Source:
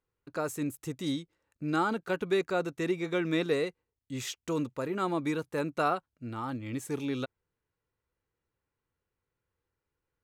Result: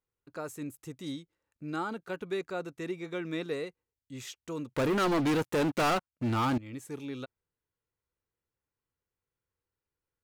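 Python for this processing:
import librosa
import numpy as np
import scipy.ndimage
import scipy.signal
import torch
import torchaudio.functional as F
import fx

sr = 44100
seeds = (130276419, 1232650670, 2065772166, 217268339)

y = fx.leveller(x, sr, passes=5, at=(4.74, 6.58))
y = y * librosa.db_to_amplitude(-6.0)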